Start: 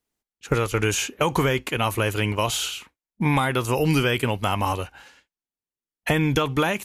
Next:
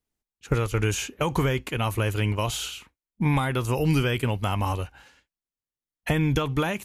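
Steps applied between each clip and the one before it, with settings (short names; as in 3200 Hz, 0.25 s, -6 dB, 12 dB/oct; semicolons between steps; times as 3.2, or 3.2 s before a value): low shelf 150 Hz +10 dB; gain -5 dB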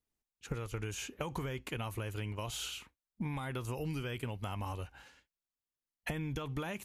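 compressor 6:1, threshold -31 dBFS, peak gain reduction 12.5 dB; gain -4.5 dB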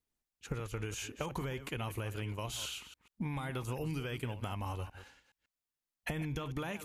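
reverse delay 0.14 s, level -12 dB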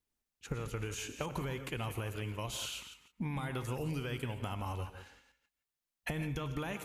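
non-linear reverb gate 0.19 s rising, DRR 10.5 dB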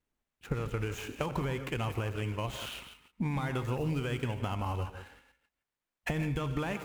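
median filter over 9 samples; gain +5 dB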